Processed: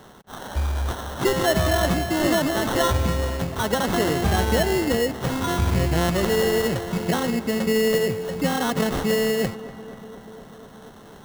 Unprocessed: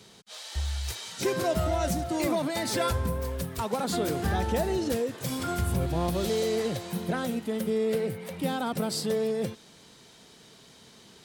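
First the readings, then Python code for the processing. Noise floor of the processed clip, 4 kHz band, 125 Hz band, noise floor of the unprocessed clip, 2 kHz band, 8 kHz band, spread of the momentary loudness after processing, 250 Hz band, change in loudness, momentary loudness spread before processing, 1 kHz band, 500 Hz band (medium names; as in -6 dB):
-45 dBFS, +7.5 dB, +6.5 dB, -54 dBFS, +10.5 dB, +5.5 dB, 11 LU, +6.5 dB, +7.0 dB, 6 LU, +6.5 dB, +6.5 dB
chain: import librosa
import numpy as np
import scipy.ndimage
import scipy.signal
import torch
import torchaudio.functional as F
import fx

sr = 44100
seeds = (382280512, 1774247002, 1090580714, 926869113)

y = fx.sample_hold(x, sr, seeds[0], rate_hz=2400.0, jitter_pct=0)
y = fx.echo_filtered(y, sr, ms=243, feedback_pct=79, hz=2600.0, wet_db=-16.5)
y = y * 10.0 ** (6.5 / 20.0)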